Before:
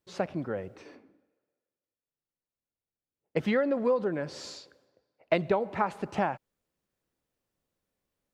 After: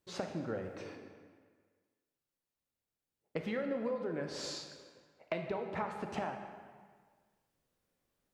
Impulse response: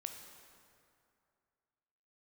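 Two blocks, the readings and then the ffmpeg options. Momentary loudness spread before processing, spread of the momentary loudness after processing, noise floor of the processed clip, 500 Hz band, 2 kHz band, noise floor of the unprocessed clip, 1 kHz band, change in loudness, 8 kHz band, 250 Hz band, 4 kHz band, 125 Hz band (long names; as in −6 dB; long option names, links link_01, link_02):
15 LU, 15 LU, below −85 dBFS, −9.0 dB, −8.0 dB, below −85 dBFS, −9.0 dB, −9.5 dB, +0.5 dB, −8.0 dB, −2.0 dB, −7.5 dB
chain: -filter_complex "[0:a]acompressor=threshold=-37dB:ratio=4[link_01];[1:a]atrim=start_sample=2205,asetrate=66150,aresample=44100[link_02];[link_01][link_02]afir=irnorm=-1:irlink=0,volume=8dB"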